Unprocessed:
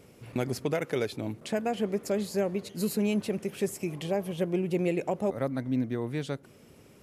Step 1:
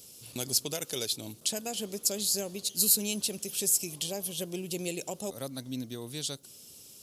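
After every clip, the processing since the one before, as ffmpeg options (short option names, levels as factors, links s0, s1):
-af "aexciter=amount=14.8:drive=2.7:freq=3100,volume=0.376"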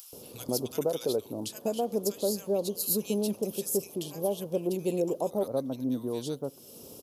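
-filter_complex "[0:a]equalizer=f=250:t=o:w=1:g=5,equalizer=f=500:t=o:w=1:g=9,equalizer=f=1000:t=o:w=1:g=8,equalizer=f=2000:t=o:w=1:g=-9,equalizer=f=4000:t=o:w=1:g=-5,equalizer=f=8000:t=o:w=1:g=-10,acompressor=mode=upward:threshold=0.0126:ratio=2.5,acrossover=split=1300[s0][s1];[s0]adelay=130[s2];[s2][s1]amix=inputs=2:normalize=0"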